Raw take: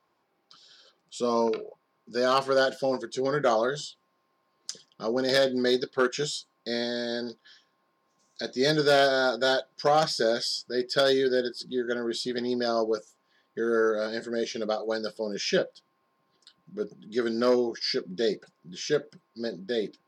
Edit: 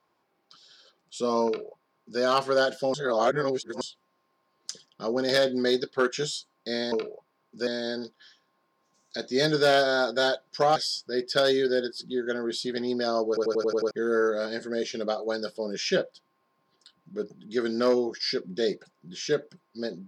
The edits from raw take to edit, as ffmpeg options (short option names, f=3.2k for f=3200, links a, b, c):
-filter_complex "[0:a]asplit=13[a][b][c][d][e][f][g][h][i][j][k][l][m];[a]atrim=end=2.942[n];[b]atrim=start=2.938:end=3.812,asetpts=PTS-STARTPTS,areverse[o];[c]atrim=start=3.808:end=6.922[p];[d]atrim=start=1.458:end=2.212[q];[e]atrim=start=6.918:end=10.012[r];[f]atrim=start=10.368:end=12.982[s];[g]atrim=start=12.888:end=12.982[t];[h]atrim=start=12.888:end=12.982[u];[i]atrim=start=12.888:end=12.982[v];[j]atrim=start=12.888:end=12.982[w];[k]atrim=start=12.888:end=12.982[x];[l]atrim=start=12.888:end=12.982[y];[m]atrim=start=13.518[z];[n][o]acrossfade=d=0.004:c1=hsin:c2=hsin[aa];[aa][p]acrossfade=d=0.004:c1=hsin:c2=hsin[ab];[ab][q]acrossfade=d=0.004:c1=hsin:c2=hsin[ac];[ac][r]acrossfade=d=0.004:c1=hsin:c2=hsin[ad];[ad][s]acrossfade=d=0.004:c1=hsin:c2=hsin[ae];[ae][t]acrossfade=d=0.004:c1=hsin:c2=hsin[af];[af][u]acrossfade=d=0.004:c1=hsin:c2=hsin[ag];[ag][v]acrossfade=d=0.004:c1=hsin:c2=hsin[ah];[ah][w]acrossfade=d=0.004:c1=hsin:c2=hsin[ai];[ai][x]acrossfade=d=0.004:c1=hsin:c2=hsin[aj];[aj][y]acrossfade=d=0.004:c1=hsin:c2=hsin[ak];[ak][z]acrossfade=d=0.004:c1=hsin:c2=hsin"